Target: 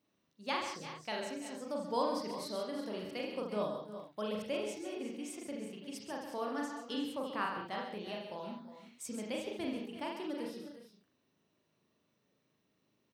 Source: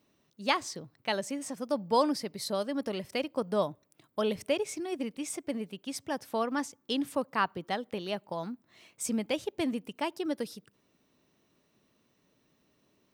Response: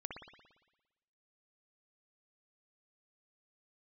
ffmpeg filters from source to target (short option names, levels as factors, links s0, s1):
-filter_complex "[0:a]highpass=75,aecho=1:1:132|145|334|362:0.355|0.237|0.15|0.237[s0];[1:a]atrim=start_sample=2205,afade=t=out:st=0.21:d=0.01,atrim=end_sample=9702,asetrate=66150,aresample=44100[s1];[s0][s1]afir=irnorm=-1:irlink=0,volume=0.841"